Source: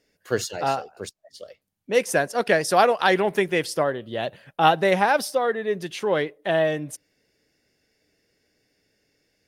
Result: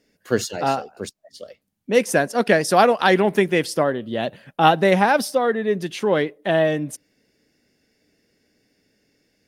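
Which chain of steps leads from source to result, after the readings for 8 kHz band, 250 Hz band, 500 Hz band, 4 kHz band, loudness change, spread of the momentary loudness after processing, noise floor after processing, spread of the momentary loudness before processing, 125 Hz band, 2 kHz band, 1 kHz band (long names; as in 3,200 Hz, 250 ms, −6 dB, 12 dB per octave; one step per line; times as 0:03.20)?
+2.0 dB, +6.5 dB, +3.0 dB, +2.0 dB, +3.0 dB, 11 LU, −69 dBFS, 12 LU, +5.5 dB, +2.0 dB, +2.5 dB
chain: parametric band 230 Hz +7.5 dB 0.89 octaves
level +2 dB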